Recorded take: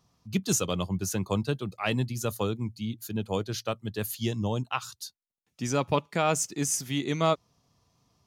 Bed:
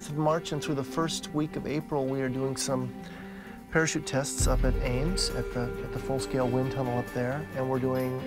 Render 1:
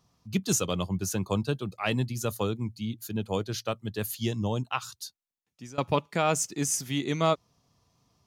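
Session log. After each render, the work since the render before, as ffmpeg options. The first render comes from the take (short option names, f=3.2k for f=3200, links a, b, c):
-filter_complex "[0:a]asettb=1/sr,asplit=3[a][b][c];[a]atrim=end=1.124[d];[b]atrim=start=1.12:end=1.74,asetpts=PTS-STARTPTS,afade=t=in:d=0.004:c=qsin,afade=t=out:st=0.616:d=0.004:c=qsin,bandreject=f=2k:w=7.4[e];[c]atrim=start=1.736[f];[d][e]acrossfade=d=0.004:c1=hsin:c2=qsin[g];[g][f]acrossfade=d=0.004:c1=qsin:c2=hsin,asplit=2[h][i];[h]atrim=end=5.78,asetpts=PTS-STARTPTS,afade=t=out:st=5.06:d=0.72:silence=0.0891251[j];[i]atrim=start=5.78,asetpts=PTS-STARTPTS,afade=t=in:d=0.004:c=hsin:silence=0.0891251[k];[j][k]concat=n=2:v=0:a=1"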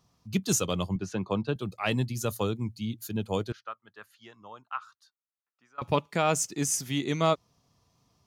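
-filter_complex "[0:a]asettb=1/sr,asplit=3[a][b][c];[a]atrim=end=0.964[d];[b]atrim=start=0.96:end=1.56,asetpts=PTS-STARTPTS,afade=t=in:d=0.004:c=qsin,afade=t=out:st=0.596:d=0.004:c=qsin,highpass=130,lowpass=3.2k[e];[c]atrim=start=1.556[f];[d][e]acrossfade=d=0.004:c1=hsin:c2=qsin[g];[g][f]acrossfade=d=0.004:c1=qsin:c2=hsin,asettb=1/sr,asplit=3[h][i][j];[h]atrim=end=3.524[k];[i]atrim=start=3.52:end=5.82,asetpts=PTS-STARTPTS,afade=t=in:d=0.004:c=qsin,afade=t=out:st=2.296:d=0.004:c=qsin,bandpass=f=1.3k:t=q:w=3.3[l];[j]atrim=start=5.816[m];[k][l]acrossfade=d=0.004:c1=hsin:c2=qsin[n];[n][m]acrossfade=d=0.004:c1=qsin:c2=hsin"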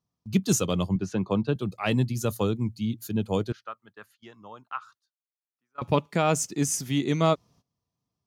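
-af "agate=range=-19dB:threshold=-57dB:ratio=16:detection=peak,equalizer=f=200:w=0.46:g=5"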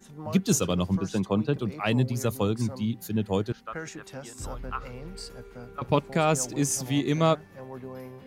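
-filter_complex "[1:a]volume=-12dB[a];[0:a][a]amix=inputs=2:normalize=0"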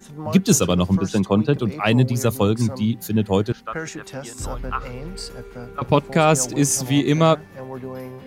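-af "volume=7.5dB,alimiter=limit=-3dB:level=0:latency=1"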